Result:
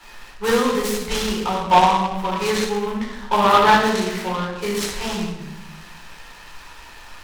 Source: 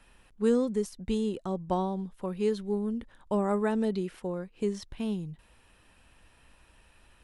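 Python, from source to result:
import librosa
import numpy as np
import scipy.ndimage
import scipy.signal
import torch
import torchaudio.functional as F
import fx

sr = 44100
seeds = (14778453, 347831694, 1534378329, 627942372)

y = fx.graphic_eq(x, sr, hz=(125, 250, 500, 1000, 2000, 4000, 8000), db=(-6, -7, -4, 12, 8, 10, 10))
y = fx.room_shoebox(y, sr, seeds[0], volume_m3=480.0, walls='mixed', distance_m=4.2)
y = fx.noise_mod_delay(y, sr, seeds[1], noise_hz=1800.0, depth_ms=0.044)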